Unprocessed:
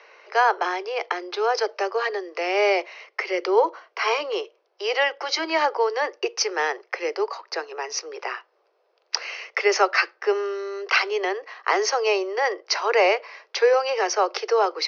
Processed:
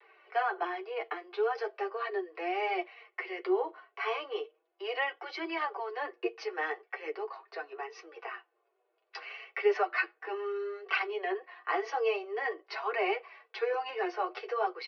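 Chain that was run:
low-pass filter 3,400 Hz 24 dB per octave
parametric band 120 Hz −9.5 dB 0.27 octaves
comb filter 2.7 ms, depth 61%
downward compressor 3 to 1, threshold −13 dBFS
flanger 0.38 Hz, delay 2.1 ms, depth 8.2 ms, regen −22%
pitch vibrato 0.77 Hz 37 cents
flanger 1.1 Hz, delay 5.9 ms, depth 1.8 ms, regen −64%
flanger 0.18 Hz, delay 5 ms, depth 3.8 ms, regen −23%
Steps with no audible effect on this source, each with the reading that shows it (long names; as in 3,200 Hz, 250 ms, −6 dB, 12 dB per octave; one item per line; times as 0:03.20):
parametric band 120 Hz: nothing at its input below 290 Hz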